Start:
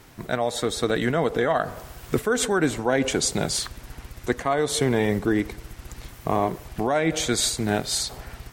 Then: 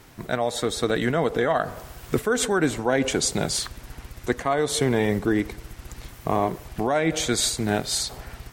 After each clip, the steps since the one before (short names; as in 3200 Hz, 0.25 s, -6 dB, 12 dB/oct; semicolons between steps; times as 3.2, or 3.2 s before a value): nothing audible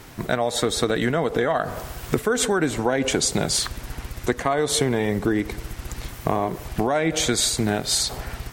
compressor, threshold -24 dBFS, peak gain reduction 8 dB; gain +6.5 dB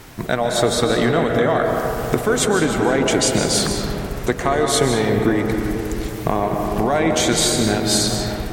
digital reverb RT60 3.6 s, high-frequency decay 0.3×, pre-delay 0.105 s, DRR 2 dB; gain +2.5 dB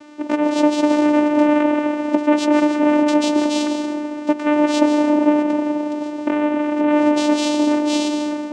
vocoder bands 4, saw 298 Hz; gain +2.5 dB